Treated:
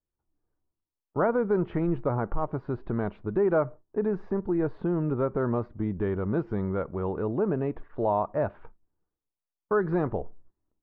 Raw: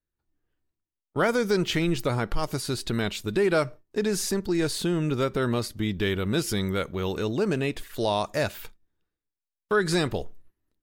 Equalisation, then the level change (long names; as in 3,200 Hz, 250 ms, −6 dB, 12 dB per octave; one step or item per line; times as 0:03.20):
transistor ladder low-pass 1,300 Hz, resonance 30%
+5.0 dB